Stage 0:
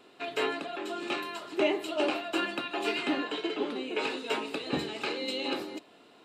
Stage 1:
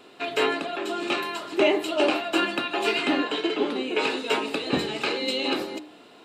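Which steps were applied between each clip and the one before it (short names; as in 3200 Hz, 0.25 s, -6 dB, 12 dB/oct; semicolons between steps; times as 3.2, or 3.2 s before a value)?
de-hum 75.81 Hz, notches 29; gain +7 dB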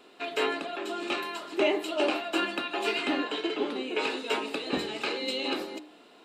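bell 120 Hz -15 dB 0.52 oct; gain -4.5 dB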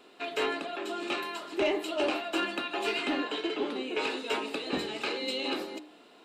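soft clip -18 dBFS, distortion -21 dB; gain -1 dB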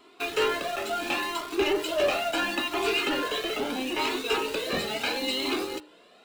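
in parallel at -10.5 dB: companded quantiser 2-bit; on the sum: cascading flanger rising 0.74 Hz; gain +5.5 dB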